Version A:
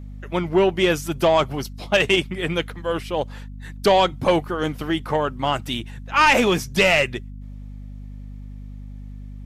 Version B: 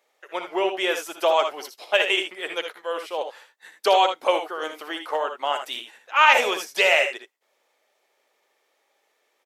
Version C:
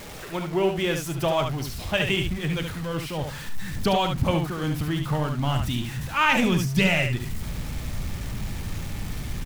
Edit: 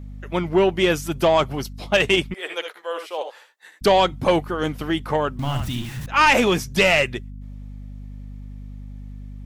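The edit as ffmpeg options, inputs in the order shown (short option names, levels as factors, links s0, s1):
-filter_complex "[0:a]asplit=3[s0][s1][s2];[s0]atrim=end=2.342[s3];[1:a]atrim=start=2.338:end=3.812[s4];[s1]atrim=start=3.808:end=5.392[s5];[2:a]atrim=start=5.388:end=6.062[s6];[s2]atrim=start=6.058[s7];[s3][s4]acrossfade=d=0.004:c1=hsin:c2=hsin[s8];[s8][s5]acrossfade=d=0.004:c1=hsin:c2=hsin[s9];[s9][s6]acrossfade=d=0.004:c1=hsin:c2=hsin[s10];[s10][s7]acrossfade=d=0.004:c1=hsin:c2=hsin"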